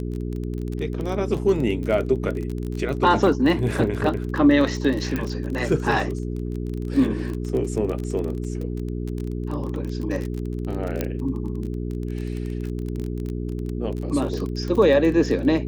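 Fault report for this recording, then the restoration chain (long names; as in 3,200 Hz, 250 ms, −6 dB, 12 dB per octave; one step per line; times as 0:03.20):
surface crackle 28 per second −27 dBFS
mains hum 60 Hz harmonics 7 −28 dBFS
0:05.16: click
0:11.01: click −10 dBFS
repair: click removal
hum removal 60 Hz, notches 7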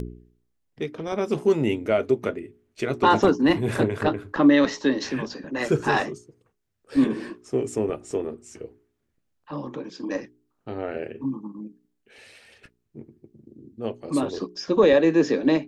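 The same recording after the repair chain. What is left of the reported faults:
none of them is left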